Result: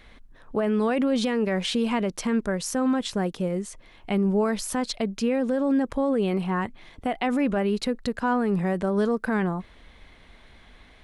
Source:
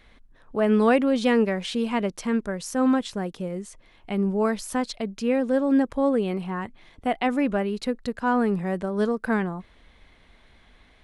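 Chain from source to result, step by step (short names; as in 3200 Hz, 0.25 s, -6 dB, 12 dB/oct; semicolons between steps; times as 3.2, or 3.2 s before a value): limiter -20 dBFS, peak gain reduction 11.5 dB; gain +4 dB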